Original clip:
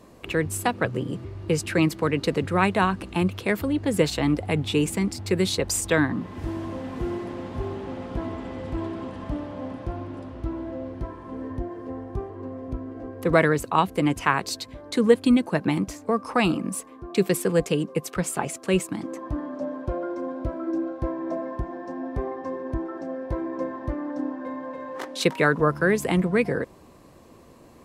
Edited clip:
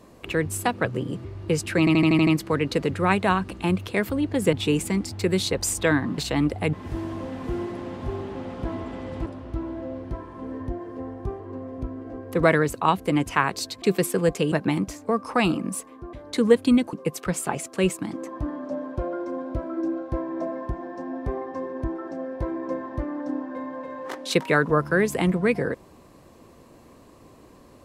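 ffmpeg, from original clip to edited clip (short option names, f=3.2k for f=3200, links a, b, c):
-filter_complex "[0:a]asplit=15[a][b][c][d][e][f][g][h][i][j][k][l][m][n][o];[a]atrim=end=1.872[p];[b]atrim=start=1.788:end=1.872[q];[c]atrim=start=1.788:end=1.872[r];[d]atrim=start=1.788:end=1.872[s];[e]atrim=start=1.788:end=1.872[t];[f]atrim=start=1.788:end=1.872[u];[g]atrim=start=1.788:end=4.052[v];[h]atrim=start=4.598:end=6.252[w];[i]atrim=start=4.048:end=4.602[x];[j]atrim=start=6.248:end=8.782[y];[k]atrim=start=10.158:end=14.722[z];[l]atrim=start=17.128:end=17.832[aa];[m]atrim=start=15.518:end=17.132[ab];[n]atrim=start=14.718:end=15.522[ac];[o]atrim=start=17.828[ad];[p][q]acrossfade=d=0.004:c1=hsin:c2=hsin[ae];[ae][r]acrossfade=d=0.004:c1=hsin:c2=hsin[af];[af][s]acrossfade=d=0.004:c1=hsin:c2=hsin[ag];[ag][t]acrossfade=d=0.004:c1=hsin:c2=hsin[ah];[ah][u]acrossfade=d=0.004:c1=hsin:c2=hsin[ai];[ai][v]acrossfade=d=0.004:c1=hsin:c2=hsin[aj];[aj][w]acrossfade=d=0.004:c1=hsin:c2=hsin[ak];[ak][x]acrossfade=d=0.004:c1=hsin:c2=hsin[al];[al][y]acrossfade=d=0.004:c1=hsin:c2=hsin[am];[am][z]acrossfade=d=0.004:c1=hsin:c2=hsin[an];[an][aa]acrossfade=d=0.004:c1=hsin:c2=hsin[ao];[ao][ab]acrossfade=d=0.004:c1=hsin:c2=hsin[ap];[ap][ac]acrossfade=d=0.004:c1=hsin:c2=hsin[aq];[aq][ad]acrossfade=d=0.004:c1=hsin:c2=hsin"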